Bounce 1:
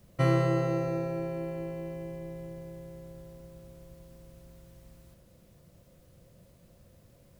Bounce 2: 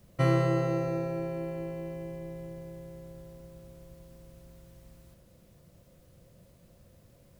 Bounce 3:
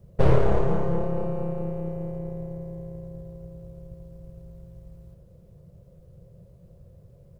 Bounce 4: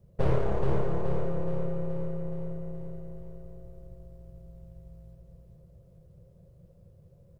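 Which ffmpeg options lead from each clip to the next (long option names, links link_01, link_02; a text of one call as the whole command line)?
ffmpeg -i in.wav -af anull out.wav
ffmpeg -i in.wav -af "aeval=exprs='0.251*(cos(1*acos(clip(val(0)/0.251,-1,1)))-cos(1*PI/2))+0.0794*(cos(7*acos(clip(val(0)/0.251,-1,1)))-cos(7*PI/2))+0.0708*(cos(8*acos(clip(val(0)/0.251,-1,1)))-cos(8*PI/2))':channel_layout=same,firequalizer=gain_entry='entry(170,0);entry(250,-17);entry(420,-1);entry(750,-11);entry(1900,-19)':delay=0.05:min_phase=1,volume=7.5dB" out.wav
ffmpeg -i in.wav -af "aecho=1:1:424|848|1272|1696|2120|2544|2968:0.596|0.328|0.18|0.0991|0.0545|0.03|0.0165,volume=-7dB" out.wav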